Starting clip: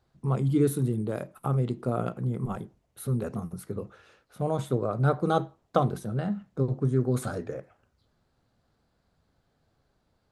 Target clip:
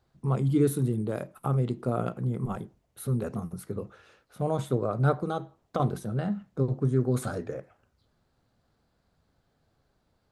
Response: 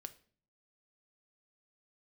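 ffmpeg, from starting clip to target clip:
-filter_complex "[0:a]asettb=1/sr,asplit=3[link_01][link_02][link_03];[link_01]atrim=end=5.124[link_04];[link_02]atrim=start=5.12:end=5.8,asetpts=PTS-STARTPTS,afade=type=in:duration=0.004:curve=qsin,afade=type=out:start_time=0.676:duration=0.004:curve=qsin,acompressor=threshold=-29dB:ratio=3[link_05];[link_03]atrim=start=5.796[link_06];[link_04][link_05]acrossfade=duration=0.004:curve1=hsin:curve2=qsin[link_07];[link_07][link_06]acrossfade=duration=0.004:curve1=qsin:curve2=hsin"

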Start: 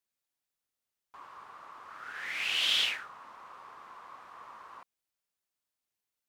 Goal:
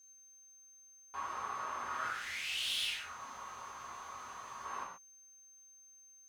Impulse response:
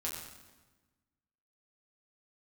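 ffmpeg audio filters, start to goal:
-filter_complex "[0:a]volume=25dB,asoftclip=hard,volume=-25dB,acompressor=threshold=-40dB:ratio=6,aeval=exprs='val(0)+0.000631*sin(2*PI*6300*n/s)':channel_layout=same,asettb=1/sr,asplit=3[link_01][link_02][link_03];[link_01]atrim=end=2.084[link_04];[link_02]atrim=start=2.08:end=4.65,asetpts=PTS-STARTPTS,afade=type=in:duration=0.004:curve=qsin,afade=type=out:start_time=2.566:duration=0.004:curve=qsin,acrossover=split=130|3000[link_05][link_06][link_07];[link_06]acompressor=threshold=-55dB:ratio=5[link_08];[link_05][link_08][link_07]amix=inputs=3:normalize=0[link_09];[link_03]atrim=start=4.646[link_10];[link_04][link_09]acrossfade=duration=0.004:curve1=hsin:curve2=qsin[link_11];[link_11][link_10]acrossfade=duration=0.004:curve1=qsin:curve2=hsin[link_12];[1:a]atrim=start_sample=2205,afade=type=out:start_time=0.2:duration=0.01,atrim=end_sample=9261[link_13];[link_12][link_13]afir=irnorm=-1:irlink=0,volume=7.5dB"

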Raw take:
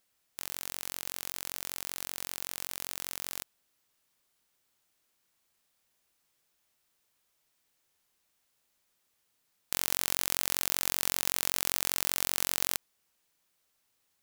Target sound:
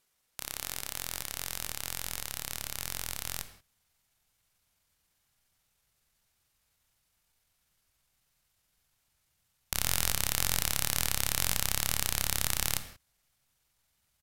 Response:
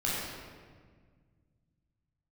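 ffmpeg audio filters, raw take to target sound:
-filter_complex "[0:a]asubboost=boost=5:cutoff=180,asetrate=32097,aresample=44100,atempo=1.37395,asplit=2[link_01][link_02];[1:a]atrim=start_sample=2205,afade=type=out:start_time=0.24:duration=0.01,atrim=end_sample=11025[link_03];[link_02][link_03]afir=irnorm=-1:irlink=0,volume=-15.5dB[link_04];[link_01][link_04]amix=inputs=2:normalize=0,volume=-1dB"

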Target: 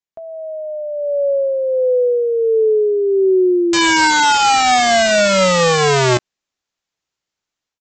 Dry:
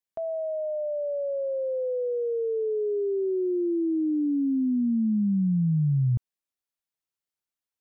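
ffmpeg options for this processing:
ffmpeg -i in.wav -filter_complex "[0:a]dynaudnorm=framelen=640:gausssize=3:maxgain=12.5dB,aresample=16000,aeval=exprs='(mod(3.16*val(0)+1,2)-1)/3.16':channel_layout=same,aresample=44100,asplit=2[link_01][link_02];[link_02]adelay=16,volume=-13.5dB[link_03];[link_01][link_03]amix=inputs=2:normalize=0" out.wav

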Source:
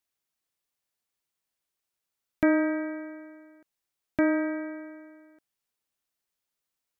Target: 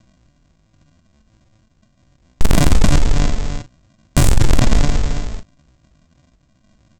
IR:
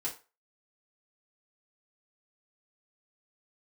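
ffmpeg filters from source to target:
-filter_complex "[0:a]aresample=11025,acrusher=samples=37:mix=1:aa=0.000001,aresample=44100,volume=32.5dB,asoftclip=hard,volume=-32.5dB,lowshelf=frequency=130:gain=4,asoftclip=type=tanh:threshold=-37.5dB,highshelf=frequency=2300:gain=7.5,asplit=2[link_01][link_02];[link_02]aecho=0:1:28|46:0.15|0.266[link_03];[link_01][link_03]amix=inputs=2:normalize=0,asetrate=64194,aresample=44100,atempo=0.686977,alimiter=level_in=35dB:limit=-1dB:release=50:level=0:latency=1,volume=-1dB"

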